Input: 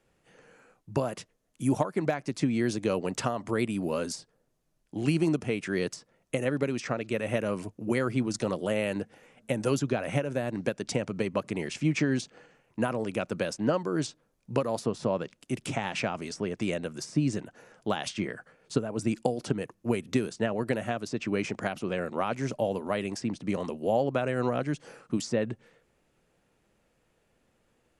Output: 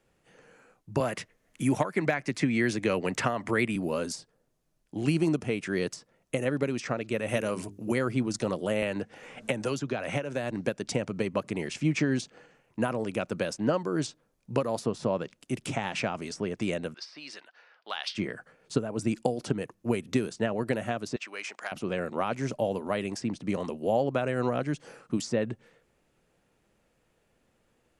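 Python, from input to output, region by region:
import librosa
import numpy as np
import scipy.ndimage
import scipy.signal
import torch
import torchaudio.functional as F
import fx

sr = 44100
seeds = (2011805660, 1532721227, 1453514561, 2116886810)

y = fx.chain(x, sr, fx.peak_eq(hz=2000.0, db=9.5, octaves=0.85),
    fx.band_squash(depth_pct=40), at=(1.0, 3.76))
y = fx.chain(y, sr, fx.high_shelf(hz=3400.0, db=8.0),
    fx.hum_notches(base_hz=50, count=9), at=(7.28, 7.92))
y = fx.chain(y, sr, fx.lowpass(hz=8100.0, slope=12),
    fx.low_shelf(hz=500.0, db=-5.0),
    fx.band_squash(depth_pct=100), at=(8.82, 10.51))
y = fx.chain(y, sr, fx.env_lowpass(base_hz=2600.0, full_db=-25.5),
    fx.highpass(hz=1100.0, slope=12),
    fx.high_shelf_res(hz=5800.0, db=-6.5, q=3.0), at=(16.94, 18.15))
y = fx.chain(y, sr, fx.highpass(hz=970.0, slope=12),
    fx.transformer_sat(knee_hz=1500.0), at=(21.16, 21.72))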